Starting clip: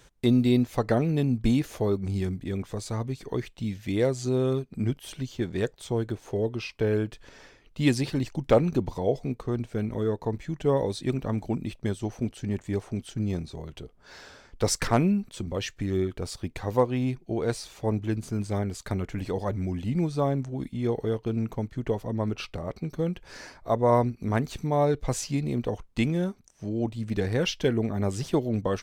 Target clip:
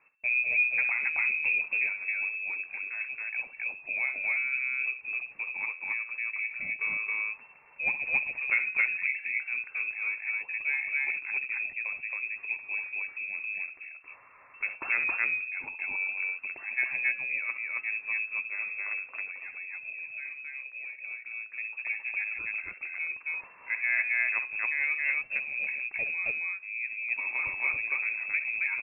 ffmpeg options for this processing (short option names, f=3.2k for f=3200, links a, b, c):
-filter_complex "[0:a]bandreject=f=202.2:t=h:w=4,bandreject=f=404.4:t=h:w=4,bandreject=f=606.6:t=h:w=4,bandreject=f=808.8:t=h:w=4,bandreject=f=1.011k:t=h:w=4,bandreject=f=1.2132k:t=h:w=4,bandreject=f=1.4154k:t=h:w=4,bandreject=f=1.6176k:t=h:w=4,bandreject=f=1.8198k:t=h:w=4,bandreject=f=2.022k:t=h:w=4,asettb=1/sr,asplit=3[a][b][c];[a]atrim=end=18.984[d];[b]atrim=start=18.98:end=21.55,asetpts=PTS-STARTPTS,afade=t=in:d=0.004:c=qsin,afade=t=out:st=2.566:d=0.004:c=qsin,acompressor=threshold=-33dB:ratio=6[e];[c]atrim=start=21.546[f];[d][e]acrossfade=d=0.004:c1=hsin:c2=qsin[g];[g][f]acrossfade=d=0.004:c1=qsin:c2=hsin,aecho=1:1:64.14|271.1:0.282|1,lowpass=f=2.3k:t=q:w=0.5098,lowpass=f=2.3k:t=q:w=0.6013,lowpass=f=2.3k:t=q:w=0.9,lowpass=f=2.3k:t=q:w=2.563,afreqshift=-2700,volume=-7.5dB"